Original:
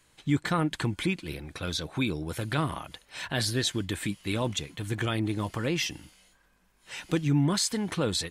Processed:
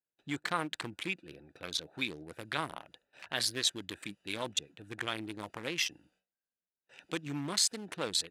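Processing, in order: local Wiener filter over 41 samples; gate with hold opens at -54 dBFS; high-pass 1.2 kHz 6 dB/octave; trim +1.5 dB

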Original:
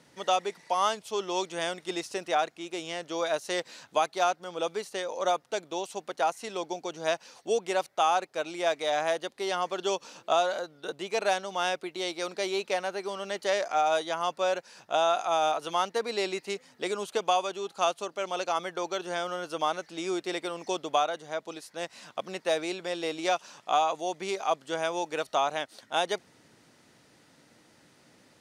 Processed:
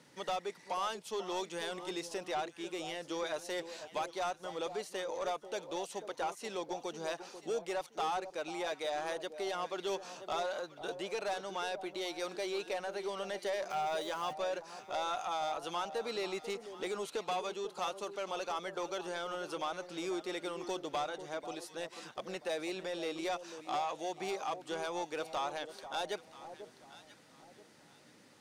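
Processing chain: 13.70–14.33 s: jump at every zero crossing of -42 dBFS; high-pass 96 Hz; band-stop 670 Hz, Q 12; in parallel at +1 dB: compression, threshold -34 dBFS, peak gain reduction 13 dB; on the sum: saturation -21 dBFS, distortion -12 dB; on a send: echo whose repeats swap between lows and highs 491 ms, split 930 Hz, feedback 52%, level -10 dB; on the sum: trim -8.5 dB

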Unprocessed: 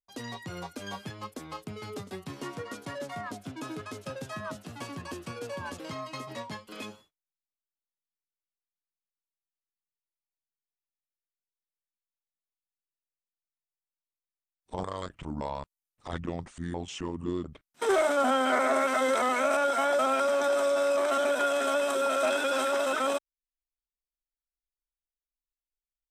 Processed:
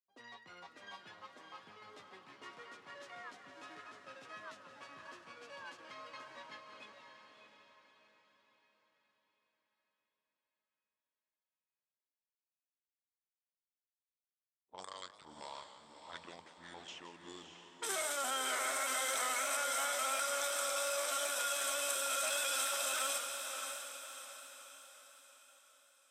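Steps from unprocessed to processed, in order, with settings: level-controlled noise filter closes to 470 Hz, open at -27.5 dBFS; differentiator; in parallel at -2 dB: peak limiter -34.5 dBFS, peak gain reduction 10 dB; on the sum: echo that smears into a reverb 615 ms, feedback 45%, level -6 dB; modulated delay 176 ms, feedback 51%, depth 159 cents, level -13 dB

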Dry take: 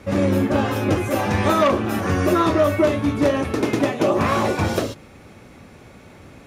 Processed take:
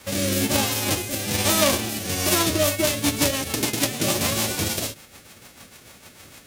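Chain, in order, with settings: formants flattened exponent 0.3; dynamic bell 1.4 kHz, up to -7 dB, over -35 dBFS, Q 1; rotary cabinet horn 1.1 Hz, later 6.7 Hz, at 2.15 s

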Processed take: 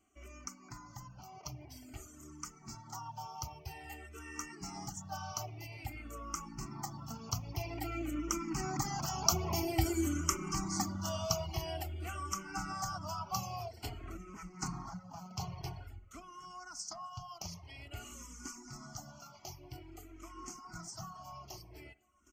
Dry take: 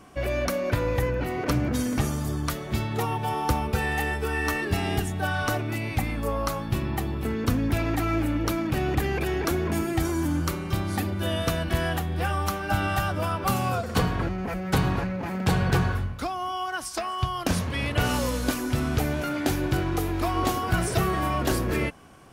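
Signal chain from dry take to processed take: Doppler pass-by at 9.80 s, 7 m/s, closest 5 m; fifteen-band graphic EQ 250 Hz -5 dB, 1 kHz -5 dB, 2.5 kHz -11 dB, 6.3 kHz +8 dB; feedback delay 764 ms, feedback 44%, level -20.5 dB; in parallel at +1 dB: compression, threshold -38 dBFS, peak gain reduction 16 dB; on the sum: peaking EQ 70 Hz -10.5 dB 2.9 oct; on a send at -10 dB: reverberation RT60 0.65 s, pre-delay 46 ms; on the sum: reverb removal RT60 0.63 s; static phaser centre 2.5 kHz, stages 8; barber-pole phaser -0.5 Hz; trim +5.5 dB

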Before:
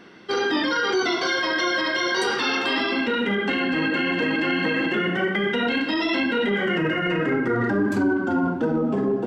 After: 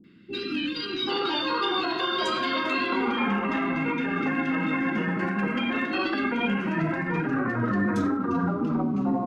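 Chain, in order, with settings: formant shift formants -3 st; three bands offset in time lows, highs, mids 40/780 ms, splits 350/1900 Hz; tape noise reduction on one side only decoder only; trim -1.5 dB

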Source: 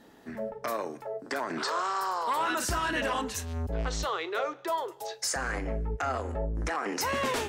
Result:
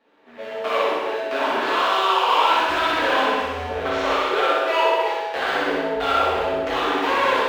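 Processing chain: dead-time distortion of 0.22 ms; on a send: flutter echo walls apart 10.7 m, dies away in 0.81 s; on the sum: level rider gain up to 15 dB; three-band isolator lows -20 dB, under 340 Hz, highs -23 dB, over 3.6 kHz; gated-style reverb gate 420 ms falling, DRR -5 dB; trim -6.5 dB

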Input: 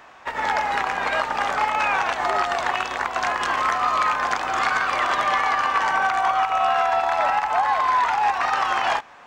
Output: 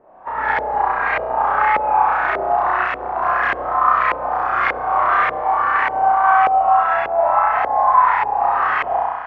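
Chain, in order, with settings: flutter echo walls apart 5.6 m, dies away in 1.2 s; LFO low-pass saw up 1.7 Hz 480–2200 Hz; trim -3.5 dB

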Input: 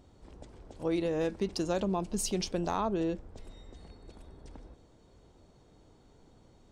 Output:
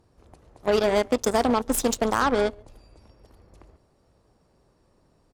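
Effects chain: tape speed +26%; speakerphone echo 140 ms, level -15 dB; Chebyshev shaper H 5 -27 dB, 7 -17 dB, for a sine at -19 dBFS; trim +9 dB

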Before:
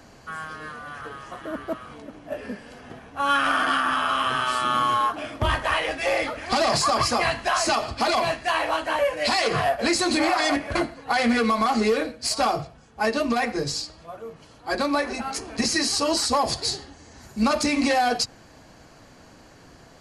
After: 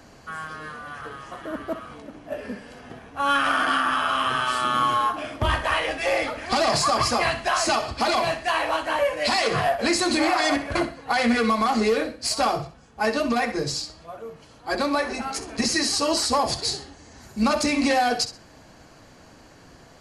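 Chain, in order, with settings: flutter echo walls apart 11 m, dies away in 0.3 s

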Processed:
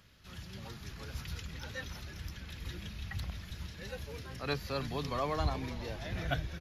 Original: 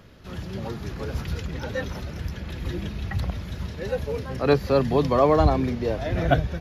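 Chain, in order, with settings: amplifier tone stack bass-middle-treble 5-5-5; frequency-shifting echo 321 ms, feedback 56%, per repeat -130 Hz, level -14 dB; trim +2 dB

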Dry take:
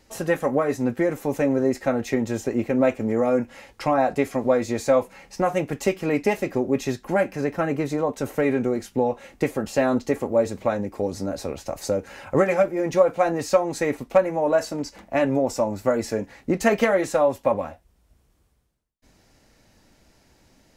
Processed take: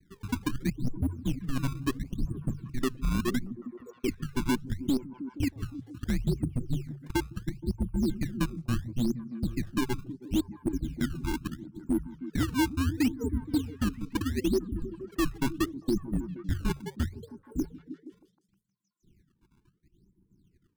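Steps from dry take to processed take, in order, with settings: random holes in the spectrogram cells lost 52%; high-pass 71 Hz 12 dB/octave; reverb removal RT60 0.79 s; steep low-pass 650 Hz 96 dB/octave; hum notches 50/100/150/200/250/300/350/400 Hz; peak limiter -18 dBFS, peak gain reduction 10 dB; frequency shift -260 Hz; decimation with a swept rate 20×, swing 160% 0.73 Hz; overload inside the chain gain 20 dB; repeats whose band climbs or falls 157 ms, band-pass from 150 Hz, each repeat 0.7 oct, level -7.5 dB

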